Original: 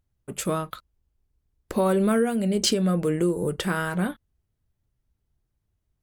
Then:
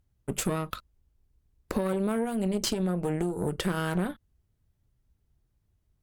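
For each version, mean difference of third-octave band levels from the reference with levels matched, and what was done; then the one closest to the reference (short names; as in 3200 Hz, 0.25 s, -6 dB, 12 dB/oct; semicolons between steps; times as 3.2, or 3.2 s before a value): 3.5 dB: low shelf 360 Hz +3.5 dB; compressor 12:1, threshold -27 dBFS, peak gain reduction 12 dB; added harmonics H 8 -20 dB, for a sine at -13 dBFS; gain +1 dB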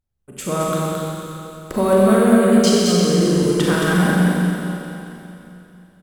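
8.5 dB: AGC gain up to 13.5 dB; on a send: echo 0.22 s -3.5 dB; on the sum: Schroeder reverb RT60 3 s, combs from 30 ms, DRR -4 dB; gain -7.5 dB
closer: first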